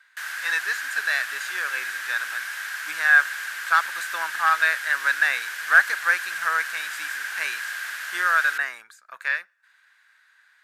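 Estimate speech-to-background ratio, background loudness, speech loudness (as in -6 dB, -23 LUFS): 7.5 dB, -30.5 LUFS, -23.0 LUFS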